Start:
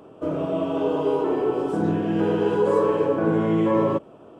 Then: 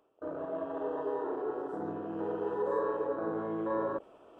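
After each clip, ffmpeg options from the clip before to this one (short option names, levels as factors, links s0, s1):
-af "afwtdn=0.0355,equalizer=f=150:t=o:w=2:g=-15,areverse,acompressor=mode=upward:threshold=0.0251:ratio=2.5,areverse,volume=0.422"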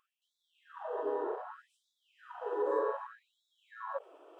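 -af "afftfilt=real='re*gte(b*sr/1024,260*pow(3400/260,0.5+0.5*sin(2*PI*0.65*pts/sr)))':imag='im*gte(b*sr/1024,260*pow(3400/260,0.5+0.5*sin(2*PI*0.65*pts/sr)))':win_size=1024:overlap=0.75"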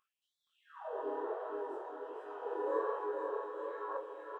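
-filter_complex "[0:a]asplit=2[s0][s1];[s1]aecho=0:1:470|869.5|1209|1498|1743:0.631|0.398|0.251|0.158|0.1[s2];[s0][s2]amix=inputs=2:normalize=0,flanger=delay=19:depth=6.7:speed=1.3"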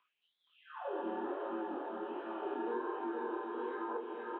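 -filter_complex "[0:a]highpass=f=240:t=q:w=0.5412,highpass=f=240:t=q:w=1.307,lowpass=f=3500:t=q:w=0.5176,lowpass=f=3500:t=q:w=0.7071,lowpass=f=3500:t=q:w=1.932,afreqshift=-78,highshelf=f=2000:g=9.5,acrossover=split=620|1600[s0][s1][s2];[s0]acompressor=threshold=0.00794:ratio=4[s3];[s1]acompressor=threshold=0.00355:ratio=4[s4];[s2]acompressor=threshold=0.00158:ratio=4[s5];[s3][s4][s5]amix=inputs=3:normalize=0,volume=1.58"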